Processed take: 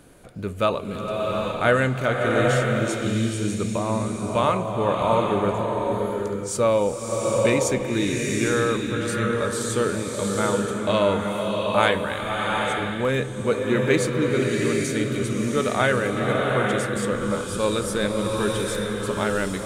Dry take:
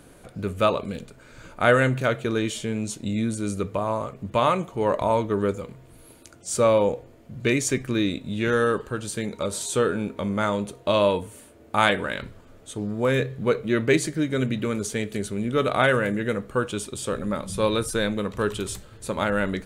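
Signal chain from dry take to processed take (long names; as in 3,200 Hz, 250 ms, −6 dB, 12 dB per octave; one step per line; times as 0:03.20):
slow-attack reverb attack 810 ms, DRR 0 dB
level −1 dB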